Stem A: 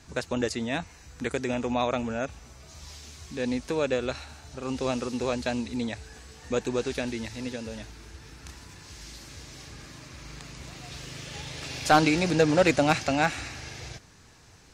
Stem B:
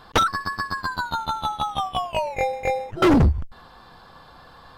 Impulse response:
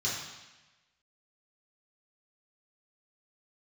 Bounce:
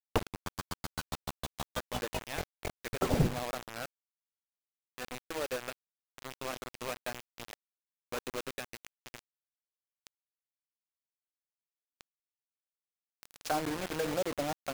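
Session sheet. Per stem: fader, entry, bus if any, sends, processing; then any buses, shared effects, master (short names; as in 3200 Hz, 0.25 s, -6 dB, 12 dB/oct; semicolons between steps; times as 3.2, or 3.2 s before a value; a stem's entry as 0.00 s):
-7.0 dB, 1.60 s, no send, Wiener smoothing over 9 samples; low shelf 320 Hz -11 dB; de-hum 162.8 Hz, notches 27
-6.0 dB, 0.00 s, no send, median-filter separation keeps percussive; de-hum 139 Hz, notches 28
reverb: off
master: treble ducked by the level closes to 700 Hz, closed at -28.5 dBFS; requantised 6-bit, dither none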